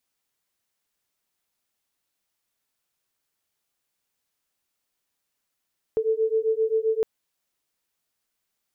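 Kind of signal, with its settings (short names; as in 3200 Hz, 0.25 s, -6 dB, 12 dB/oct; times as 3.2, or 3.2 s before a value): beating tones 439 Hz, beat 7.6 Hz, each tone -23.5 dBFS 1.06 s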